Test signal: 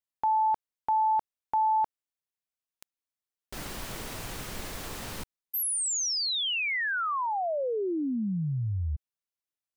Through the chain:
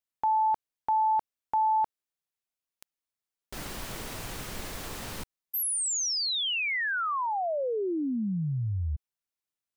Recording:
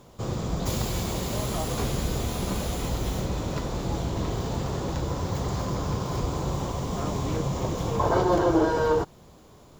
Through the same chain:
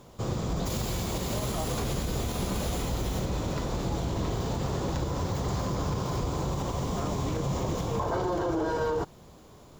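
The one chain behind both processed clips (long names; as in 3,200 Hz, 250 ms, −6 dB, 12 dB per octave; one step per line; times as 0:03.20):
brickwall limiter −21 dBFS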